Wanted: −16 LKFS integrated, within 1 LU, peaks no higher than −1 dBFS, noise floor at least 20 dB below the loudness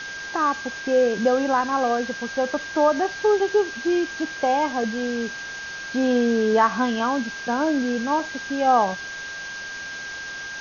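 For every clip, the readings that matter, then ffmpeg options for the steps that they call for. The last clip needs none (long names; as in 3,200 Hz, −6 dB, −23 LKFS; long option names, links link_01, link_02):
interfering tone 1,600 Hz; level of the tone −32 dBFS; background noise floor −34 dBFS; target noise floor −43 dBFS; integrated loudness −23.0 LKFS; sample peak −6.0 dBFS; target loudness −16.0 LKFS
→ -af "bandreject=frequency=1600:width=30"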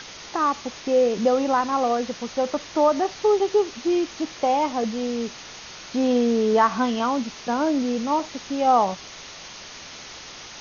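interfering tone none found; background noise floor −41 dBFS; target noise floor −43 dBFS
→ -af "afftdn=noise_reduction=6:noise_floor=-41"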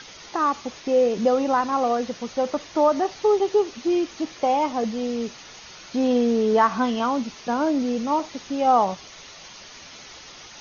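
background noise floor −44 dBFS; integrated loudness −23.0 LKFS; sample peak −6.5 dBFS; target loudness −16.0 LKFS
→ -af "volume=7dB,alimiter=limit=-1dB:level=0:latency=1"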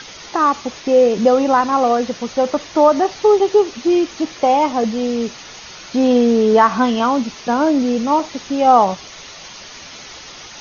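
integrated loudness −16.0 LKFS; sample peak −1.0 dBFS; background noise floor −37 dBFS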